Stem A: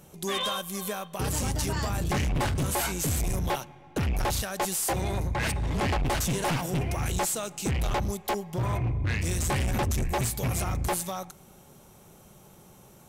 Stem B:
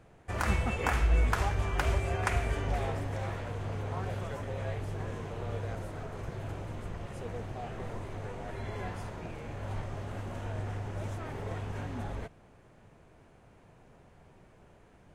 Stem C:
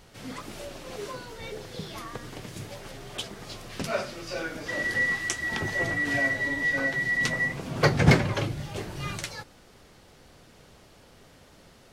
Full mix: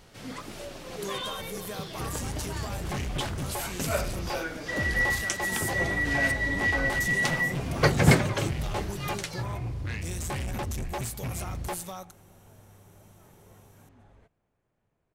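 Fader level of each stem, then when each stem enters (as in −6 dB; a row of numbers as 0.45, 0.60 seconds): −5.5, −19.5, −0.5 decibels; 0.80, 2.00, 0.00 seconds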